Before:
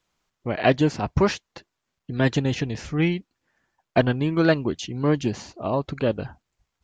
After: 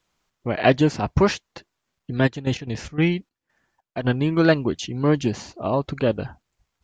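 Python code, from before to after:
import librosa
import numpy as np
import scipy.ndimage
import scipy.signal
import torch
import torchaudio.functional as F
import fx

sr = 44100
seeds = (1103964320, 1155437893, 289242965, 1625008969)

y = fx.step_gate(x, sr, bpm=146, pattern='..xxx...x.xx.xxx', floor_db=-12.0, edge_ms=4.5, at=(2.26, 4.04), fade=0.02)
y = F.gain(torch.from_numpy(y), 2.0).numpy()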